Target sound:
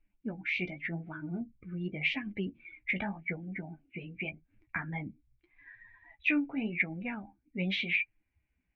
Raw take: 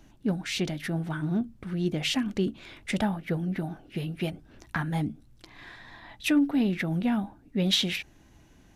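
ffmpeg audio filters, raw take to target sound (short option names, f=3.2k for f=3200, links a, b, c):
-af "flanger=delay=9.5:depth=7.3:regen=33:speed=0.86:shape=sinusoidal,afftdn=nr=21:nf=-43,lowpass=f=2.3k:t=q:w=9.3,volume=-6dB"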